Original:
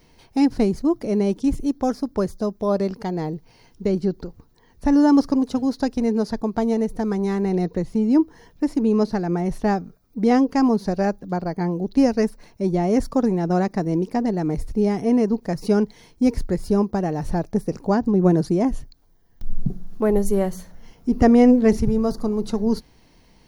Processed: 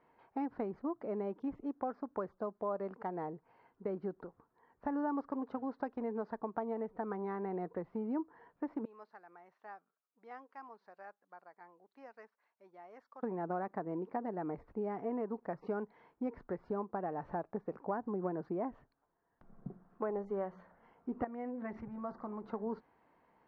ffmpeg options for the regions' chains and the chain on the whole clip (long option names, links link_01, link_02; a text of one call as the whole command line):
ffmpeg -i in.wav -filter_complex "[0:a]asettb=1/sr,asplit=3[link_01][link_02][link_03];[link_01]atrim=end=8.854[link_04];[link_02]atrim=start=8.85:end=13.23,asetpts=PTS-STARTPTS,afade=type=in:duration=0.004:curve=qsin,afade=type=out:start_time=4.376:duration=0.004:curve=qsin,lowpass=8100,aderivative[link_05];[link_03]atrim=start=13.226[link_06];[link_04][link_05]acrossfade=duration=0.004:curve1=hsin:curve2=qsin[link_07];[link_07][link_06]acrossfade=duration=0.004:curve1=qsin:curve2=hsin,asettb=1/sr,asplit=3[link_08][link_09][link_10];[link_08]atrim=end=21.244[link_11];[link_09]atrim=start=21.24:end=22.44,asetpts=PTS-STARTPTS,afade=type=in:duration=0.004:curve=qsin,afade=type=out:start_time=1.196:duration=0.004:curve=qsin,equalizer=frequency=2000:width=2.8:gain=5,bandreject=frequency=440:width=5.3,acompressor=threshold=-22dB:ratio=8:attack=3.2:release=140:knee=1:detection=peak[link_12];[link_10]atrim=start=22.436[link_13];[link_11][link_12]acrossfade=duration=0.004:curve1=hsin:curve2=qsin[link_14];[link_14][link_13]acrossfade=duration=0.004:curve1=qsin:curve2=hsin,lowpass=frequency=1300:width=0.5412,lowpass=frequency=1300:width=1.3066,aderivative,acompressor=threshold=-47dB:ratio=3,volume=12.5dB" out.wav